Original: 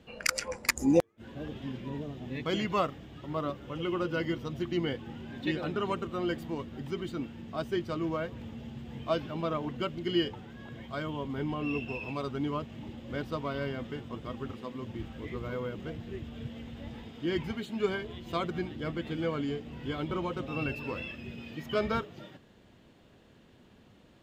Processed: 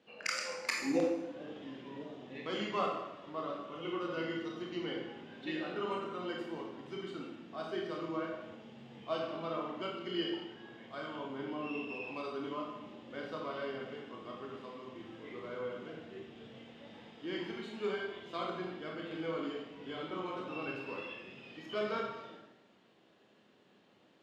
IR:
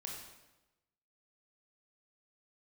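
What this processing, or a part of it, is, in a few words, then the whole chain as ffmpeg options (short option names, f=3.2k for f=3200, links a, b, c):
supermarket ceiling speaker: -filter_complex "[0:a]highpass=280,lowpass=5.7k[a];[1:a]atrim=start_sample=2205[b];[a][b]afir=irnorm=-1:irlink=0,highshelf=f=10k:g=6,volume=-2dB"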